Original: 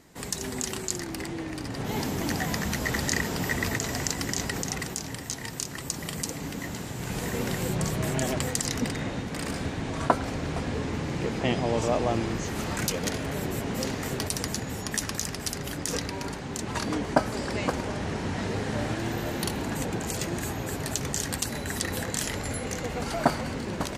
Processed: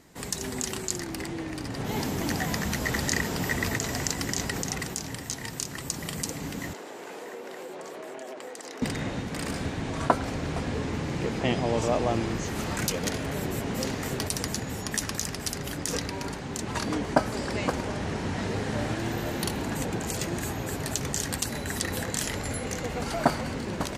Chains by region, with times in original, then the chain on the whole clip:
0:06.73–0:08.82: high-pass filter 390 Hz 24 dB per octave + spectral tilt −3 dB per octave + downward compressor, threshold −36 dBFS
whole clip: no processing

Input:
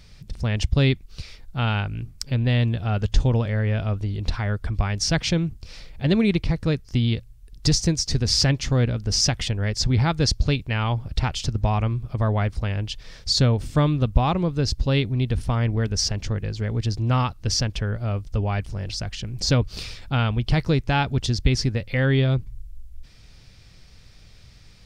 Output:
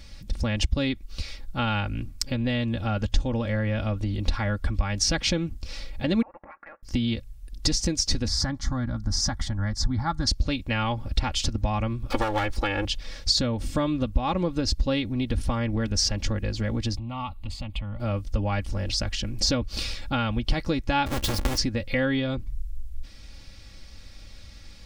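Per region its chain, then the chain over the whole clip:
0:06.22–0:06.83: high-pass filter 1,200 Hz 24 dB per octave + voice inversion scrambler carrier 3,100 Hz + downward compressor 12 to 1, threshold −43 dBFS
0:08.28–0:10.27: high-shelf EQ 5,100 Hz −9.5 dB + phaser with its sweep stopped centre 1,100 Hz, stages 4
0:12.10–0:12.85: lower of the sound and its delayed copy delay 2.3 ms + parametric band 160 Hz −14 dB 1.6 octaves + multiband upward and downward compressor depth 100%
0:16.97–0:18.00: high-shelf EQ 7,000 Hz −6.5 dB + downward compressor 4 to 1, threshold −29 dBFS + phaser with its sweep stopped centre 1,600 Hz, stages 6
0:21.06–0:21.58: each half-wave held at its own peak + downward compressor, threshold −25 dBFS
whole clip: downward compressor 5 to 1, threshold −23 dBFS; comb filter 3.6 ms, depth 66%; level +2 dB

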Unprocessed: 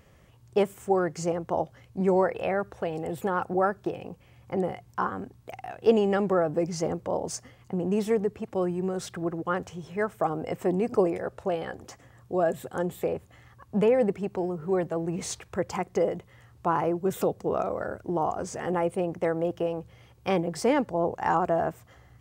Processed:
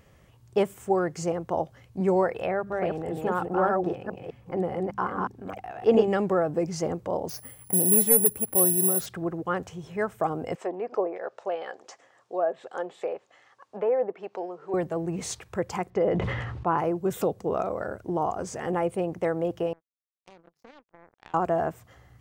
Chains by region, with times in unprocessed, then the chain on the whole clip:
0:02.46–0:06.08: delay that plays each chunk backwards 205 ms, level −2 dB + high-shelf EQ 3,500 Hz −8 dB + mains-hum notches 50/100/150/200/250 Hz
0:07.29–0:09.06: hard clipping −19 dBFS + bad sample-rate conversion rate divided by 4×, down filtered, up zero stuff
0:10.55–0:14.74: treble cut that deepens with the level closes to 1,300 Hz, closed at −20 dBFS + Chebyshev band-pass filter 540–6,500 Hz
0:15.90–0:16.78: low-pass filter 3,100 Hz + level that may fall only so fast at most 28 dB per second
0:19.73–0:21.34: Chebyshev low-pass filter 6,800 Hz, order 6 + power curve on the samples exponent 3 + downward compressor 4 to 1, threshold −49 dBFS
whole clip: no processing

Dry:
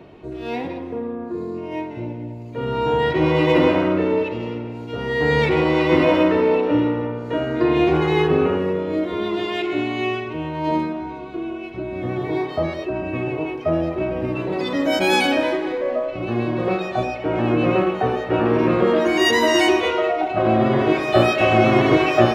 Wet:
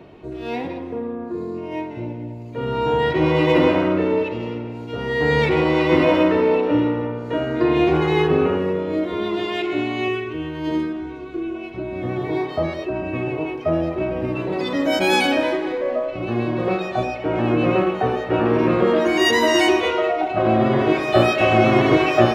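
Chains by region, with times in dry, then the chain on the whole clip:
0:10.08–0:11.55: parametric band 790 Hz −9 dB 0.95 octaves + comb filter 2.6 ms, depth 47%
whole clip: no processing

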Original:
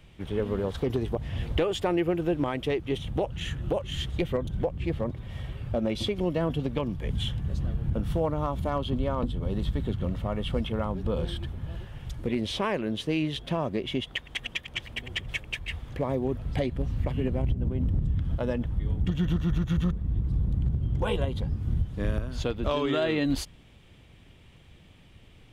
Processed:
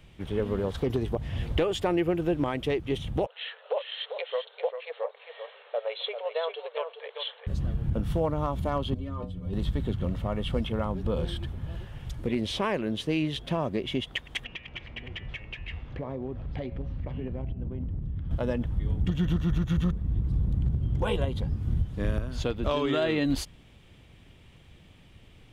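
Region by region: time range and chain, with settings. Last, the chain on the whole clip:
0:03.26–0:07.47: linear-phase brick-wall band-pass 420–4,300 Hz + single-tap delay 395 ms −8 dB
0:08.94–0:09.53: low-shelf EQ 260 Hz +6 dB + notch filter 840 Hz, Q 9.1 + stiff-string resonator 90 Hz, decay 0.31 s, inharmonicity 0.008
0:14.44–0:18.31: hum removal 110 Hz, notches 27 + downward compressor 3 to 1, threshold −31 dBFS + high-frequency loss of the air 190 metres
whole clip: no processing

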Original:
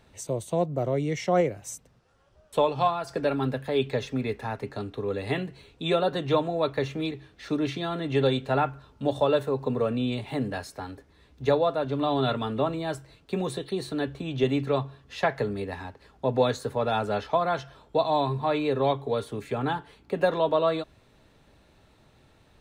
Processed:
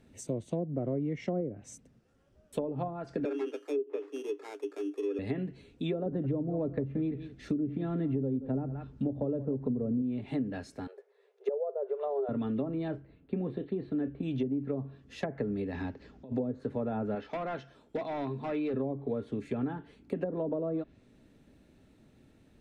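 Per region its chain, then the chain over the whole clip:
0:03.25–0:05.19: spectral tilt −3 dB per octave + sample-rate reduction 3,000 Hz + Chebyshev high-pass with heavy ripple 290 Hz, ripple 9 dB
0:06.06–0:10.02: low-shelf EQ 230 Hz +8 dB + single-tap delay 177 ms −16.5 dB
0:10.87–0:12.29: linear-phase brick-wall high-pass 380 Hz + spectral tilt −4 dB per octave
0:12.88–0:14.23: high-frequency loss of the air 470 metres + double-tracking delay 34 ms −13.5 dB
0:15.72–0:16.32: low-pass filter 6,400 Hz 24 dB per octave + compressor whose output falls as the input rises −37 dBFS
0:17.15–0:18.74: low-shelf EQ 200 Hz −10 dB + hard clipping −23.5 dBFS
whole clip: treble cut that deepens with the level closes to 590 Hz, closed at −19.5 dBFS; graphic EQ with 10 bands 250 Hz +10 dB, 1,000 Hz −8 dB, 4,000 Hz −5 dB; downward compressor, threshold −24 dBFS; level −4.5 dB

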